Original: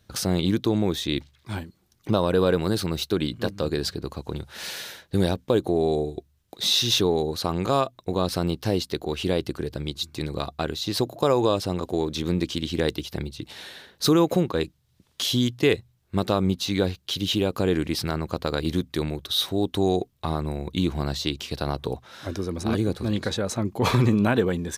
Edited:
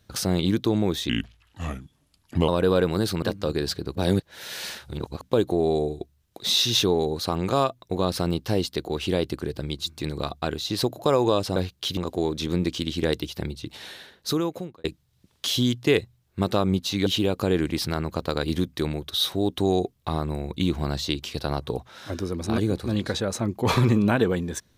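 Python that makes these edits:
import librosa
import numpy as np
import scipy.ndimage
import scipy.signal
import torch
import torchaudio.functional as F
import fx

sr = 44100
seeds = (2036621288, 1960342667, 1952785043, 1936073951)

y = fx.edit(x, sr, fx.speed_span(start_s=1.09, length_s=1.1, speed=0.79),
    fx.cut(start_s=2.93, length_s=0.46),
    fx.reverse_span(start_s=4.12, length_s=1.26),
    fx.fade_out_span(start_s=13.66, length_s=0.94),
    fx.move(start_s=16.82, length_s=0.41, to_s=11.73), tone=tone)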